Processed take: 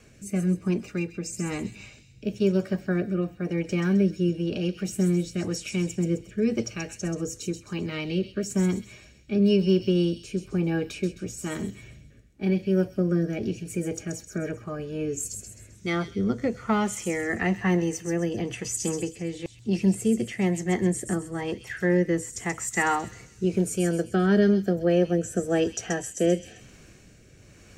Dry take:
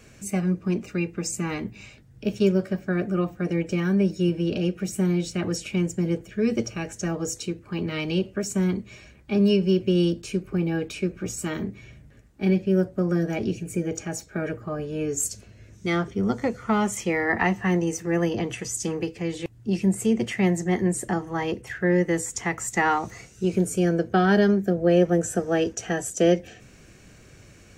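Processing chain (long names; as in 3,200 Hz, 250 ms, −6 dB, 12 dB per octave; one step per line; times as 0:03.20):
rotating-speaker cabinet horn 1 Hz
delay with a high-pass on its return 131 ms, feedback 41%, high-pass 3,900 Hz, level −5 dB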